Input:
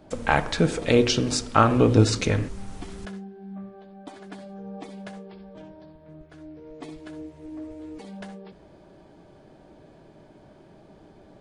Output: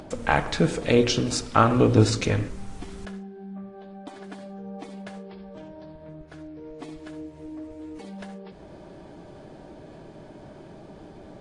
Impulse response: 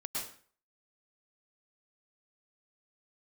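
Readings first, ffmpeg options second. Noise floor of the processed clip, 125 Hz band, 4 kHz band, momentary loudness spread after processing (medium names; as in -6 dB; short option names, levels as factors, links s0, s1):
-46 dBFS, -0.5 dB, -1.0 dB, 21 LU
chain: -filter_complex "[0:a]acompressor=mode=upward:threshold=0.0178:ratio=2.5,asplit=2[s0][s1];[1:a]atrim=start_sample=2205,lowpass=3600[s2];[s1][s2]afir=irnorm=-1:irlink=0,volume=0.112[s3];[s0][s3]amix=inputs=2:normalize=0,volume=0.891" -ar 22050 -c:a aac -b:a 48k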